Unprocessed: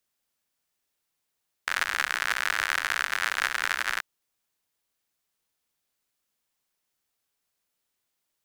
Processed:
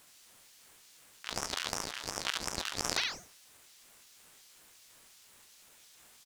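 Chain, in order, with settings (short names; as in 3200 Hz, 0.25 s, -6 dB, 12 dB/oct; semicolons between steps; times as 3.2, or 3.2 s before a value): bell 3700 Hz +14 dB 2.7 oct; de-hum 394.5 Hz, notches 10; negative-ratio compressor -31 dBFS, ratio -0.5; speed mistake 33 rpm record played at 45 rpm; on a send: echo 71 ms -5 dB; on the sum: ring modulator with a swept carrier 2000 Hz, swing 70%, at 2.8 Hz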